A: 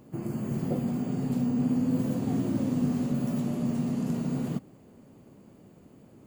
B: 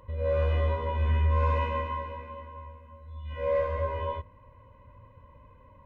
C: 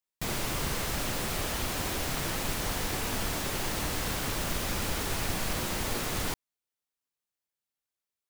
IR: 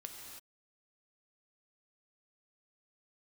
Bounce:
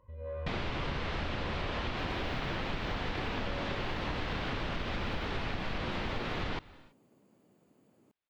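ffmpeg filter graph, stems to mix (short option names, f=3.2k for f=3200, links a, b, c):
-filter_complex "[0:a]highpass=f=280:p=1,acompressor=threshold=-39dB:ratio=6,adelay=1850,volume=-9.5dB[a];[1:a]highshelf=f=3k:g=-9.5,asoftclip=type=tanh:threshold=-19.5dB,volume=-11.5dB[b];[2:a]lowpass=f=3.7k:w=0.5412,lowpass=f=3.7k:w=1.3066,adelay=250,volume=2dB,asplit=2[c][d];[d]volume=-15dB[e];[3:a]atrim=start_sample=2205[f];[e][f]afir=irnorm=-1:irlink=0[g];[a][b][c][g]amix=inputs=4:normalize=0,acompressor=threshold=-31dB:ratio=6"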